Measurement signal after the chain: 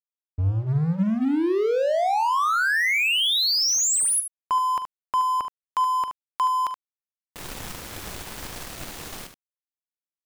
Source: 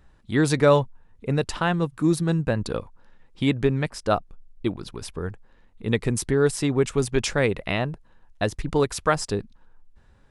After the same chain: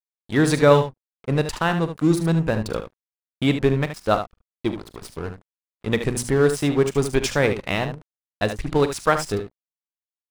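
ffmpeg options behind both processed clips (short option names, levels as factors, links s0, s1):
-af "bandreject=f=60:t=h:w=6,bandreject=f=120:t=h:w=6,bandreject=f=180:t=h:w=6,bandreject=f=240:t=h:w=6,aeval=exprs='sgn(val(0))*max(abs(val(0))-0.015,0)':c=same,aecho=1:1:42|74:0.168|0.335,volume=1.41"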